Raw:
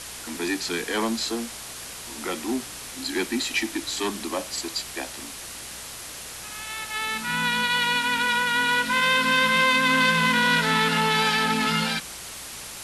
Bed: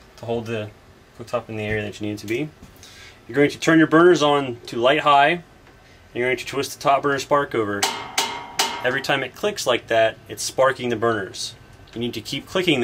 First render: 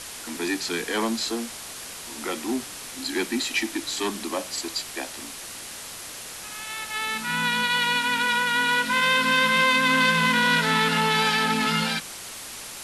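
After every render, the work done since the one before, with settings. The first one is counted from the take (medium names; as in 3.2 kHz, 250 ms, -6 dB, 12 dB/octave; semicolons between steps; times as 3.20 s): de-hum 60 Hz, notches 3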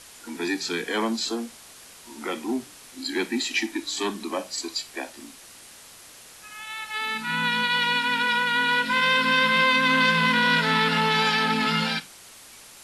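noise print and reduce 9 dB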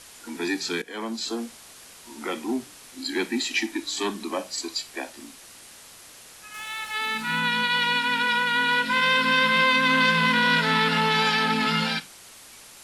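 0.82–1.43 s: fade in, from -15 dB; 6.54–7.40 s: companding laws mixed up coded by mu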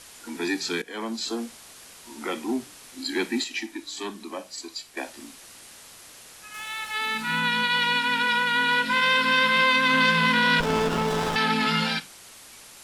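3.44–4.97 s: gain -6 dB; 8.95–9.94 s: bass shelf 130 Hz -9.5 dB; 10.60–11.36 s: sliding maximum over 17 samples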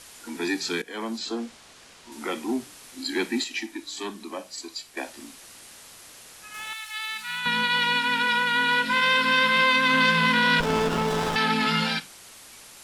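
1.18–2.12 s: distance through air 63 m; 6.73–7.46 s: amplifier tone stack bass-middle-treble 10-0-10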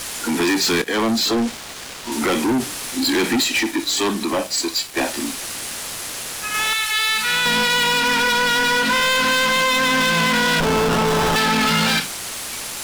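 compression, threshold -23 dBFS, peak gain reduction 7 dB; waveshaping leveller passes 5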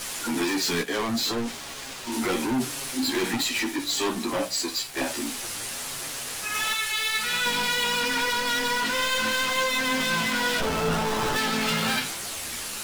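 saturation -20.5 dBFS, distortion -17 dB; chorus voices 4, 0.31 Hz, delay 12 ms, depth 4.8 ms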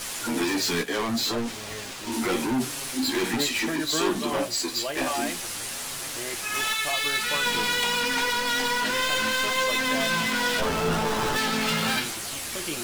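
add bed -16 dB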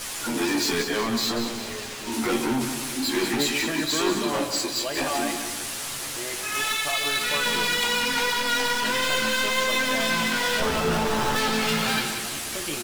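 doubling 14 ms -10.5 dB; two-band feedback delay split 1.3 kHz, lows 143 ms, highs 187 ms, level -8 dB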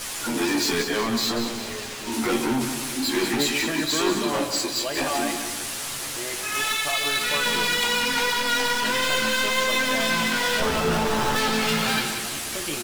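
trim +1 dB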